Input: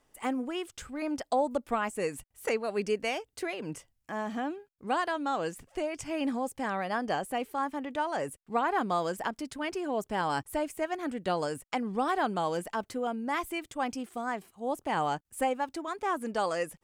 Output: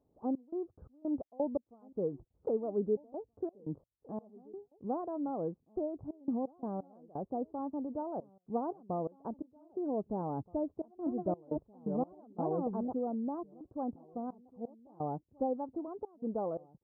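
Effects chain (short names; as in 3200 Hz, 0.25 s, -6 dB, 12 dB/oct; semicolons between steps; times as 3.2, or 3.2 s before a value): 10.43–12.94 reverse delay 0.633 s, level -3 dB; HPF 60 Hz; step gate "xx.xx.x.x..xxxx" 86 bpm -24 dB; Gaussian blur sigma 13 samples; outdoor echo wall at 270 m, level -24 dB; gain +1 dB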